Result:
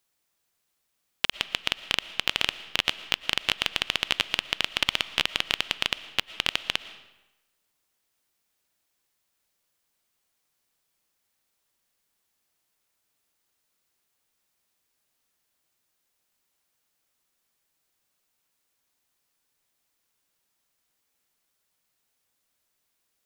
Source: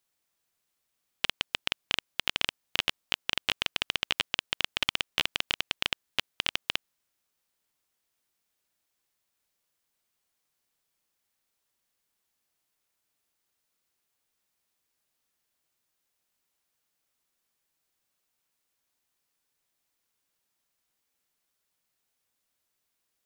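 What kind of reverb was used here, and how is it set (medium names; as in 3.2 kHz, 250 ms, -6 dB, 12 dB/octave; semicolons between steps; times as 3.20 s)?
algorithmic reverb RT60 1 s, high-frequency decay 0.85×, pre-delay 75 ms, DRR 15 dB; trim +3.5 dB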